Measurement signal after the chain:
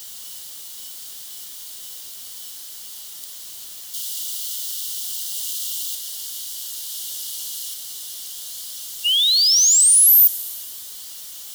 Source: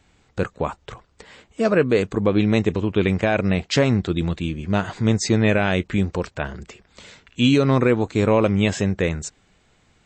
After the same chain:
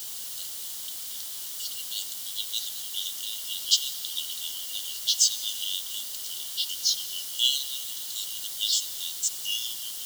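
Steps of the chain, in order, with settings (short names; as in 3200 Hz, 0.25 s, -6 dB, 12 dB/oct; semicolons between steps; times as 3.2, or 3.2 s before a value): G.711 law mismatch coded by A; echoes that change speed 0.662 s, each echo -3 st, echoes 2; added noise pink -40 dBFS; brick-wall FIR high-pass 2800 Hz; tilt +3 dB/oct; digital reverb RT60 2.9 s, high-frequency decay 0.95×, pre-delay 35 ms, DRR 15 dB; in parallel at -9 dB: requantised 6-bit, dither triangular; on the sum: gain -3.5 dB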